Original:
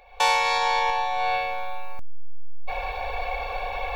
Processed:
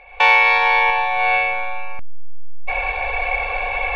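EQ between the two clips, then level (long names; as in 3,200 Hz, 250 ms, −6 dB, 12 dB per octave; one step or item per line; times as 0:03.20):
low-pass with resonance 2,400 Hz, resonance Q 2.9
+4.0 dB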